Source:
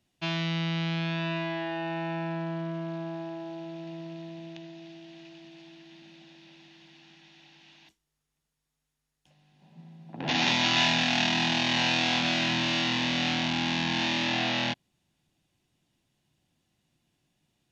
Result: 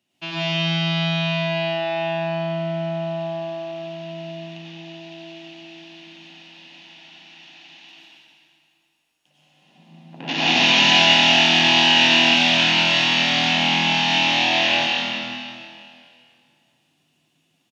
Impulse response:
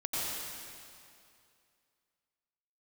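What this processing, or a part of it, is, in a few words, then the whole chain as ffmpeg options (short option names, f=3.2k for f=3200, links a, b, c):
PA in a hall: -filter_complex "[0:a]highpass=180,equalizer=f=2.8k:t=o:w=0.35:g=7,aecho=1:1:183:0.422[a];[1:a]atrim=start_sample=2205[b];[a][b]afir=irnorm=-1:irlink=0,volume=1dB"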